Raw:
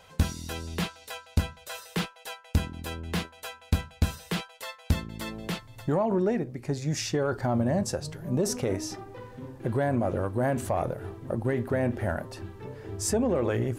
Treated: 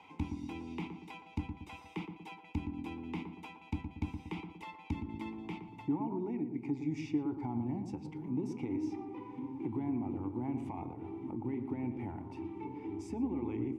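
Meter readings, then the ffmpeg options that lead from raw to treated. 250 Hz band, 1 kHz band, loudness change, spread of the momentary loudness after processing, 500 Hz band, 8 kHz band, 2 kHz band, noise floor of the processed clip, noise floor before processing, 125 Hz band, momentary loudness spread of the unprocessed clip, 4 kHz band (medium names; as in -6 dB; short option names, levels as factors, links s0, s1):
-4.5 dB, -10.0 dB, -9.5 dB, 9 LU, -15.5 dB, under -25 dB, -14.5 dB, -55 dBFS, -53 dBFS, -12.0 dB, 14 LU, -19.0 dB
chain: -filter_complex "[0:a]acrossover=split=120[s0][s1];[s1]acompressor=threshold=0.00562:ratio=2.5[s2];[s0][s2]amix=inputs=2:normalize=0,asplit=3[s3][s4][s5];[s3]bandpass=f=300:t=q:w=8,volume=1[s6];[s4]bandpass=f=870:t=q:w=8,volume=0.501[s7];[s5]bandpass=f=2240:t=q:w=8,volume=0.355[s8];[s6][s7][s8]amix=inputs=3:normalize=0,bandreject=f=4200:w=8.3,asplit=2[s9][s10];[s10]adelay=117,lowpass=f=940:p=1,volume=0.501,asplit=2[s11][s12];[s12]adelay=117,lowpass=f=940:p=1,volume=0.5,asplit=2[s13][s14];[s14]adelay=117,lowpass=f=940:p=1,volume=0.5,asplit=2[s15][s16];[s16]adelay=117,lowpass=f=940:p=1,volume=0.5,asplit=2[s17][s18];[s18]adelay=117,lowpass=f=940:p=1,volume=0.5,asplit=2[s19][s20];[s20]adelay=117,lowpass=f=940:p=1,volume=0.5[s21];[s9][s11][s13][s15][s17][s19][s21]amix=inputs=7:normalize=0,volume=5.01"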